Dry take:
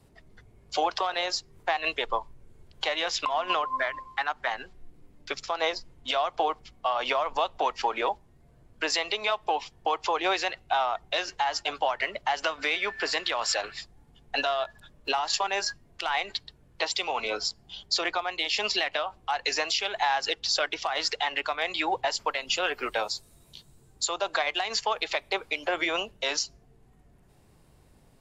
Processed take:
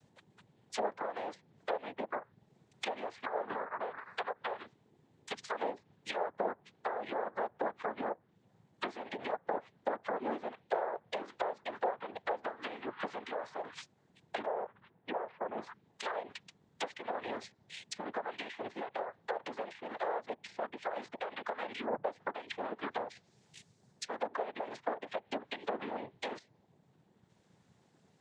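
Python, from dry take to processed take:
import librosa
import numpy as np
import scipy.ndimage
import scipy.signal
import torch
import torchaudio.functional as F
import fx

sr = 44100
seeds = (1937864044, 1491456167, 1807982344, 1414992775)

y = fx.noise_vocoder(x, sr, seeds[0], bands=6)
y = fx.env_lowpass_down(y, sr, base_hz=870.0, full_db=-25.0)
y = fx.gaussian_blur(y, sr, sigma=3.0, at=(14.46, 15.58))
y = y * 10.0 ** (-6.0 / 20.0)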